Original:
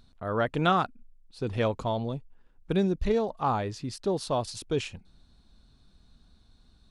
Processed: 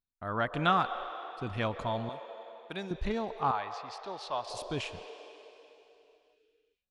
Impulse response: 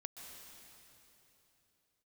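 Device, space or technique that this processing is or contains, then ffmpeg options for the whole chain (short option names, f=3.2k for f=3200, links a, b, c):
filtered reverb send: -filter_complex "[0:a]agate=range=-33dB:threshold=-47dB:ratio=16:detection=peak,asettb=1/sr,asplit=3[a][b][c];[a]atrim=end=2.094[d];[b]atrim=start=2.09:end=2.91,asetpts=PTS-STARTPTS,afade=t=in:d=0.004:c=qsin,afade=t=out:st=0.816:d=0.004:c=qsin,highpass=f=750:p=1[e];[c]atrim=start=2.906[f];[d][e]acrossfade=d=0.004:c1=hsin:c2=qsin[g];[g][f]acrossfade=d=0.004:c1=qsin:c2=hsin,asplit=2[h][i];[i]highpass=f=460:w=0.5412,highpass=f=460:w=1.3066,lowpass=4.2k[j];[1:a]atrim=start_sample=2205[k];[j][k]afir=irnorm=-1:irlink=0,volume=2.5dB[l];[h][l]amix=inputs=2:normalize=0,asettb=1/sr,asplit=3[m][n][o];[m]atrim=end=3.514[p];[n]atrim=start=3.51:end=4.5,asetpts=PTS-STARTPTS,afade=t=in:d=0.004:c=qsin,afade=t=out:st=0.986:d=0.004:c=qsin,acrossover=split=520 6200:gain=0.141 1 0.0794[q][r][s];[q][r][s]amix=inputs=3:normalize=0[t];[o]atrim=start=4.496[u];[p][t]acrossfade=d=0.004:c1=hsin:c2=qsin[v];[v][u]acrossfade=d=0.004:c1=qsin:c2=hsin,volume=-5dB"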